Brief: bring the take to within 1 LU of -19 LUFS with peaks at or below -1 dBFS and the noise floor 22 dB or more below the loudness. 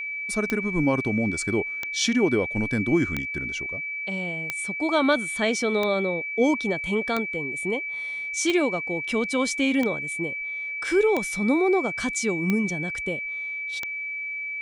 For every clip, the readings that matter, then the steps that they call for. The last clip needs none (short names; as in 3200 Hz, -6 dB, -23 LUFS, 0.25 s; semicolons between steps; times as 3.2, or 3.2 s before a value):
clicks 11; steady tone 2300 Hz; tone level -29 dBFS; loudness -25.0 LUFS; peak -9.5 dBFS; loudness target -19.0 LUFS
-> de-click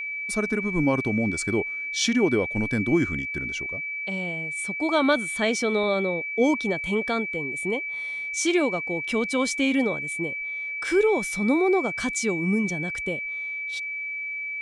clicks 0; steady tone 2300 Hz; tone level -29 dBFS
-> notch 2300 Hz, Q 30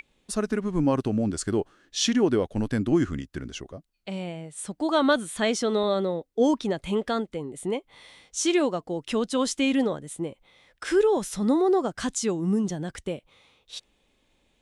steady tone none; loudness -26.0 LUFS; peak -10.0 dBFS; loudness target -19.0 LUFS
-> gain +7 dB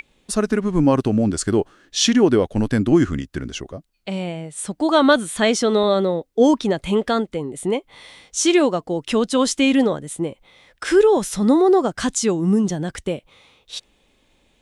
loudness -19.0 LUFS; peak -3.0 dBFS; noise floor -63 dBFS